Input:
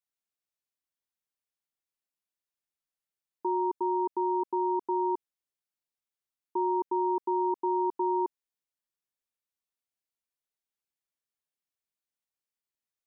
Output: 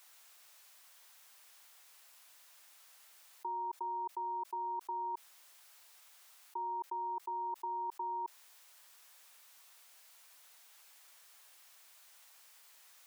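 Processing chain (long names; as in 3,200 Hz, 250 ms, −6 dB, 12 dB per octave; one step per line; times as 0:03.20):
Chebyshev high-pass filter 850 Hz, order 2
envelope flattener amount 100%
level −7.5 dB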